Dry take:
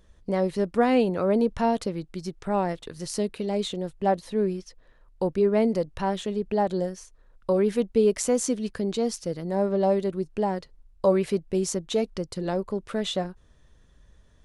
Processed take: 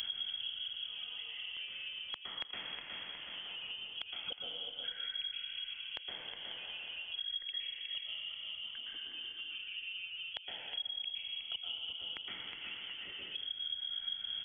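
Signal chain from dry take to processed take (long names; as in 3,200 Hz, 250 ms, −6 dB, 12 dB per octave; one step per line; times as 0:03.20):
reverb reduction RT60 1.1 s
volume swells 147 ms
downward compressor 2.5 to 1, threshold −46 dBFS, peak gain reduction 18 dB
gate with flip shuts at −43 dBFS, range −36 dB
repeating echo 364 ms, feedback 25%, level −9 dB
dense smooth reverb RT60 1.6 s, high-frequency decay 0.85×, pre-delay 105 ms, DRR −4.5 dB
voice inversion scrambler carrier 3,300 Hz
multiband upward and downward compressor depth 100%
level +13.5 dB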